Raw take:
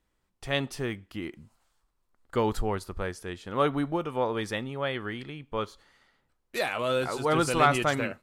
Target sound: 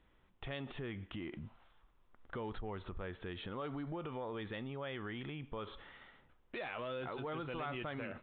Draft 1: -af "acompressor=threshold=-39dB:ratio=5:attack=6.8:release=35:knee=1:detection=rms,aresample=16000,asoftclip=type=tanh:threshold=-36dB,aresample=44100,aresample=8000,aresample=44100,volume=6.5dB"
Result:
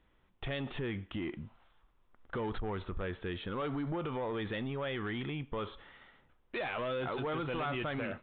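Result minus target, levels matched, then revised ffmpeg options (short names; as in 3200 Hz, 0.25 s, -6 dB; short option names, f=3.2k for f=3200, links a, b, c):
compressor: peak gain reduction -8 dB
-af "acompressor=threshold=-49dB:ratio=5:attack=6.8:release=35:knee=1:detection=rms,aresample=16000,asoftclip=type=tanh:threshold=-36dB,aresample=44100,aresample=8000,aresample=44100,volume=6.5dB"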